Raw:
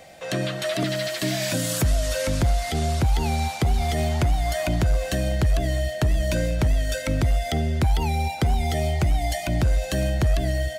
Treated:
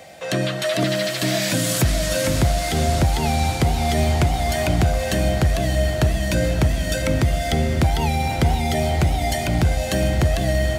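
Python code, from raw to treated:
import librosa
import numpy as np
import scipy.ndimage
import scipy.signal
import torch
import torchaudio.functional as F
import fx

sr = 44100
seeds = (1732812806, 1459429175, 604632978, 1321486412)

p1 = scipy.signal.sosfilt(scipy.signal.butter(2, 62.0, 'highpass', fs=sr, output='sos'), x)
p2 = p1 + fx.echo_diffused(p1, sr, ms=537, feedback_pct=61, wet_db=-8, dry=0)
y = p2 * 10.0 ** (4.0 / 20.0)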